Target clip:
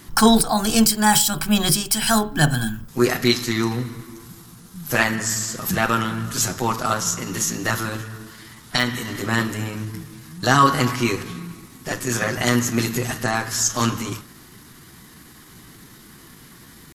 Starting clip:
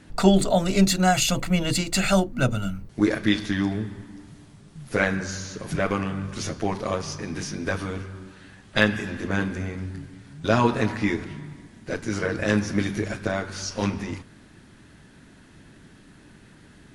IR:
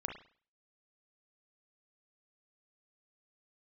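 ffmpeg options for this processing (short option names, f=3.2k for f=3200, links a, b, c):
-filter_complex "[0:a]crystalizer=i=9.5:c=0,alimiter=limit=-1dB:level=0:latency=1:release=349,equalizer=f=125:t=o:w=1:g=3,equalizer=f=500:t=o:w=1:g=-6,equalizer=f=1k:t=o:w=1:g=7,equalizer=f=2k:t=o:w=1:g=-9,equalizer=f=4k:t=o:w=1:g=-3,equalizer=f=8k:t=o:w=1:g=-5,asetrate=50951,aresample=44100,atempo=0.865537,asplit=2[a][b];[1:a]atrim=start_sample=2205,lowpass=5.9k[c];[b][c]afir=irnorm=-1:irlink=0,volume=-9.5dB[d];[a][d]amix=inputs=2:normalize=0"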